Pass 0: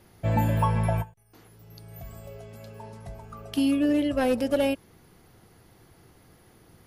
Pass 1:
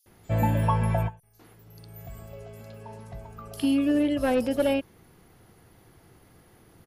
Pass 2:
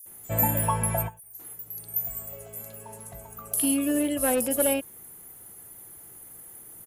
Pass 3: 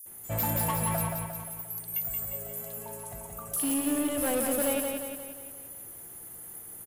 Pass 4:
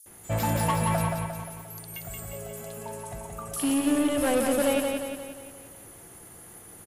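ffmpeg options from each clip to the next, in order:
-filter_complex "[0:a]acrossover=split=5000[a][b];[a]adelay=60[c];[c][b]amix=inputs=2:normalize=0"
-af "lowshelf=f=240:g=-6.5,aexciter=amount=12.1:drive=3.2:freq=7.2k"
-filter_complex "[0:a]asoftclip=type=tanh:threshold=-25.5dB,asplit=2[a][b];[b]aecho=0:1:176|352|528|704|880|1056|1232:0.631|0.328|0.171|0.0887|0.0461|0.024|0.0125[c];[a][c]amix=inputs=2:normalize=0"
-af "lowpass=7.6k,volume=5dB"

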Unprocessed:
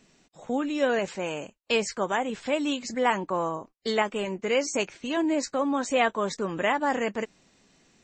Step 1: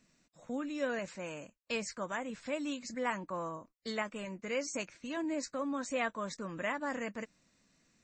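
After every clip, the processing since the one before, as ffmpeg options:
-af "equalizer=f=400:t=o:w=0.33:g=-10,equalizer=f=800:t=o:w=0.33:g=-9,equalizer=f=3.15k:t=o:w=0.33:g=-7,volume=-8dB"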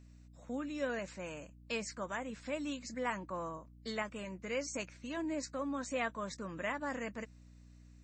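-af "aeval=exprs='val(0)+0.002*(sin(2*PI*60*n/s)+sin(2*PI*2*60*n/s)/2+sin(2*PI*3*60*n/s)/3+sin(2*PI*4*60*n/s)/4+sin(2*PI*5*60*n/s)/5)':c=same,volume=-2dB"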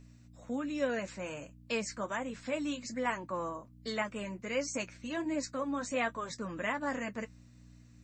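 -af "flanger=delay=7.1:depth=2.5:regen=-47:speed=1.3:shape=sinusoidal,volume=7.5dB"

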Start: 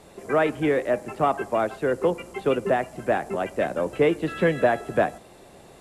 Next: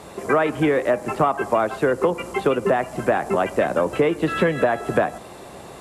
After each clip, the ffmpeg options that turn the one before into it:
-af "highpass=43,equalizer=f=1.1k:w=1.9:g=5,acompressor=threshold=-24dB:ratio=6,volume=8.5dB"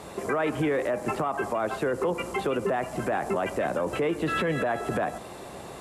-af "alimiter=limit=-17dB:level=0:latency=1:release=27,volume=-1.5dB"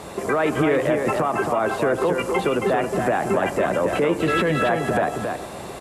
-af "aecho=1:1:273:0.562,volume=5.5dB"

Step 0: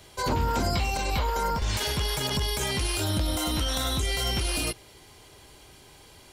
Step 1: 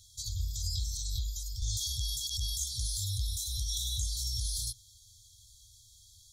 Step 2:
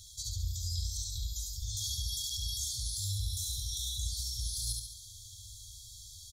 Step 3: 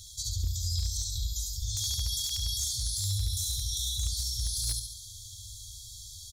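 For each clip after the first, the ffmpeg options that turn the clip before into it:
-af "afftfilt=real='re*(1-between(b*sr/4096,120,3200))':imag='im*(1-between(b*sr/4096,120,3200))':win_size=4096:overlap=0.75,equalizer=f=6.5k:t=o:w=0.4:g=9,volume=-5.5dB"
-af "areverse,acompressor=threshold=-41dB:ratio=6,areverse,aecho=1:1:70|140|210|280|350|420|490:0.708|0.361|0.184|0.0939|0.0479|0.0244|0.0125,volume=6dB"
-af "aeval=exprs='0.0473*(abs(mod(val(0)/0.0473+3,4)-2)-1)':c=same,volume=4.5dB"

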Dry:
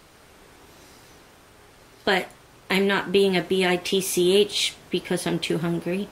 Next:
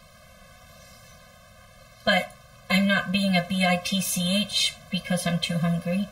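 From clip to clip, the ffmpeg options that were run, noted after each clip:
-af "afftfilt=real='re*eq(mod(floor(b*sr/1024/250),2),0)':imag='im*eq(mod(floor(b*sr/1024/250),2),0)':win_size=1024:overlap=0.75,volume=3.5dB"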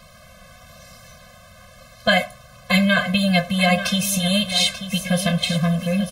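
-af "aecho=1:1:887|1774|2661:0.282|0.0761|0.0205,volume=4.5dB"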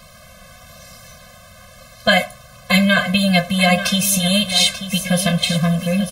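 -af "highshelf=f=5.7k:g=4.5,volume=2.5dB"

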